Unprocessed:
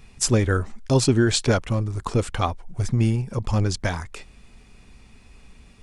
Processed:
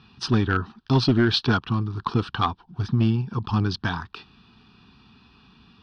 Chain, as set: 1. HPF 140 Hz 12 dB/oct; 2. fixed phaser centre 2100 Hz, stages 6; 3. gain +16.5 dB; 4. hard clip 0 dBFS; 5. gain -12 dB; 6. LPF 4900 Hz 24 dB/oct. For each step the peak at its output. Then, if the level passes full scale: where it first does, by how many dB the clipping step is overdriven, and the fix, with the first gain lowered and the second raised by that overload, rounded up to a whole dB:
-3.5, -11.0, +5.5, 0.0, -12.0, -11.0 dBFS; step 3, 5.5 dB; step 3 +10.5 dB, step 5 -6 dB

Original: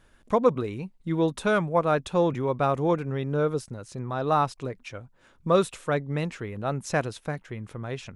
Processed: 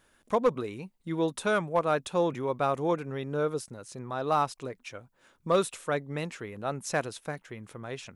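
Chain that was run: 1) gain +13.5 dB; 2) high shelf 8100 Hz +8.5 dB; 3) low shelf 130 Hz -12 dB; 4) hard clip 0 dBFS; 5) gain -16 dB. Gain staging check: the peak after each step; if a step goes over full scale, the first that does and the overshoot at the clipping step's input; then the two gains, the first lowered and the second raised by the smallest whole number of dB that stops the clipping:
+6.0, +6.0, +4.5, 0.0, -16.0 dBFS; step 1, 4.5 dB; step 1 +8.5 dB, step 5 -11 dB

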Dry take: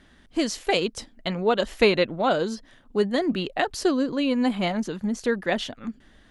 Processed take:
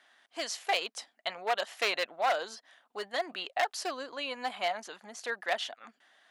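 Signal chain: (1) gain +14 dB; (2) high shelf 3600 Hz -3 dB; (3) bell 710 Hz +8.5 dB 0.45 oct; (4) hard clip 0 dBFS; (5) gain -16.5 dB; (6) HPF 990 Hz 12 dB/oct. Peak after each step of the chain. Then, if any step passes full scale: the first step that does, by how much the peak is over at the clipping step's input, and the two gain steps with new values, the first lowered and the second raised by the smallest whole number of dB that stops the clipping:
+7.5, +7.5, +9.5, 0.0, -16.5, -14.0 dBFS; step 1, 9.5 dB; step 1 +4 dB, step 5 -6.5 dB

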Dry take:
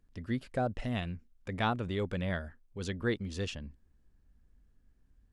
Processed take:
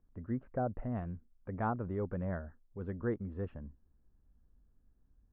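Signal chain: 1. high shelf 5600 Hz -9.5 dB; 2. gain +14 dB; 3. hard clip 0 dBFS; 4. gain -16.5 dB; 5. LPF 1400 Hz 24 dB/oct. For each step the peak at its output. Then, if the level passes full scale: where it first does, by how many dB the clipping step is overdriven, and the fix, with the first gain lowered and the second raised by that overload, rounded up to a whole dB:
-16.5, -2.5, -2.5, -19.0, -23.0 dBFS; no overload

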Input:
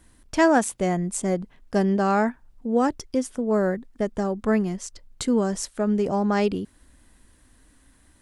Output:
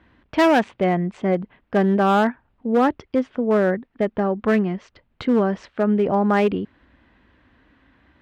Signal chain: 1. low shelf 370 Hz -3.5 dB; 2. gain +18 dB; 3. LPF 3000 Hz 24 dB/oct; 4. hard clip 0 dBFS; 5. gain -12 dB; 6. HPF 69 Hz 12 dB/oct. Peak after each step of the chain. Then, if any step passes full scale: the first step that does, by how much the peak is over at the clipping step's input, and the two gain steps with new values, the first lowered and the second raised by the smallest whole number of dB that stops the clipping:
-9.5, +8.5, +8.5, 0.0, -12.0, -9.0 dBFS; step 2, 8.5 dB; step 2 +9 dB, step 5 -3 dB

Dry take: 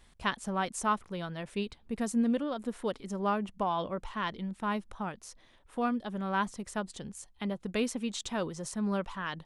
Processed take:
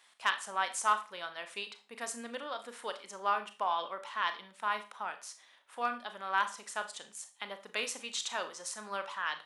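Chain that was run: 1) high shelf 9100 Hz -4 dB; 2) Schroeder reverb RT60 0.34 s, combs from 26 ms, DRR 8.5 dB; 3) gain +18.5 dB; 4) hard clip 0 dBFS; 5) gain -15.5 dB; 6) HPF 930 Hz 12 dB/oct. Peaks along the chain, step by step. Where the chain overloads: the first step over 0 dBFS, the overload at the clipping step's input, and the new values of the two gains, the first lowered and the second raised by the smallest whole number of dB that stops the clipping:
-14.5, -14.5, +4.0, 0.0, -15.5, -13.5 dBFS; step 3, 4.0 dB; step 3 +14.5 dB, step 5 -11.5 dB

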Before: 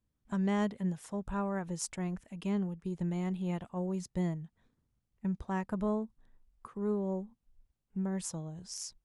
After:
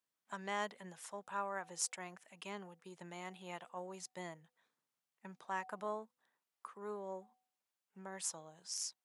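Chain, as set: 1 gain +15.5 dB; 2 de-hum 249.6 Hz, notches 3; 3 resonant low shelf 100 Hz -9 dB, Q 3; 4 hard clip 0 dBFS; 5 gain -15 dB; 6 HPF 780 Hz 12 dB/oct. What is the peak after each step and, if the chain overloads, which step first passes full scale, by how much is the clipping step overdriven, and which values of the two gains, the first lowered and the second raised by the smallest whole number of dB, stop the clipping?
-4.5, -4.5, -3.5, -3.5, -18.5, -20.5 dBFS; no overload

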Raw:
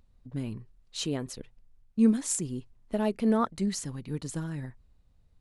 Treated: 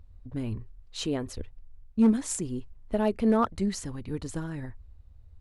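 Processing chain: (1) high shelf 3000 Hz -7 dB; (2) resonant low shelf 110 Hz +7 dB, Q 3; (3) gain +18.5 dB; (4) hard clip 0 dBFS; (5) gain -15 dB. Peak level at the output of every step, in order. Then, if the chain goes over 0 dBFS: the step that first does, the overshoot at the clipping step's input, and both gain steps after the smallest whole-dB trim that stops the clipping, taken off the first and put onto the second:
-14.0, -15.0, +3.5, 0.0, -15.0 dBFS; step 3, 3.5 dB; step 3 +14.5 dB, step 5 -11 dB

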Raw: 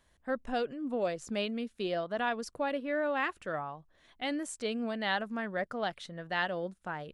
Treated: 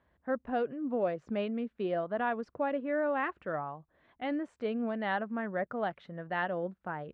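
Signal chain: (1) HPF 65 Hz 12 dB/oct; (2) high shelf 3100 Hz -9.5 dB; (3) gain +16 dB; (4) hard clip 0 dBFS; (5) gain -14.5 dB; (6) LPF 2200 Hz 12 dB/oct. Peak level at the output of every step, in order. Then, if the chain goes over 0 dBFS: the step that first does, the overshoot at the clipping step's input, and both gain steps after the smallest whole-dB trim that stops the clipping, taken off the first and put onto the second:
-16.5, -19.0, -3.0, -3.0, -17.5, -19.0 dBFS; no overload

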